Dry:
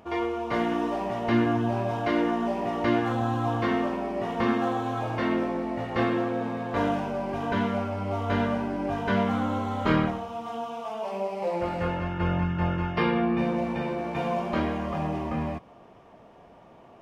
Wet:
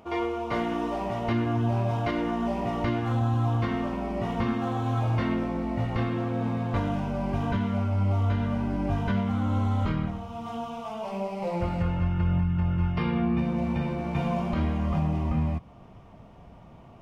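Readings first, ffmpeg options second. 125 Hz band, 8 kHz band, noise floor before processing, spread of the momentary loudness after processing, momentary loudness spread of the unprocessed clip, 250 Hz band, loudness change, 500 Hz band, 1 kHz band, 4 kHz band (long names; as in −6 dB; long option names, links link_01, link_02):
+6.0 dB, can't be measured, −52 dBFS, 5 LU, 6 LU, −0.5 dB, −0.5 dB, −4.0 dB, −3.5 dB, −3.5 dB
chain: -af "bandreject=frequency=1700:width=10,asubboost=boost=5:cutoff=170,alimiter=limit=-17dB:level=0:latency=1:release=453"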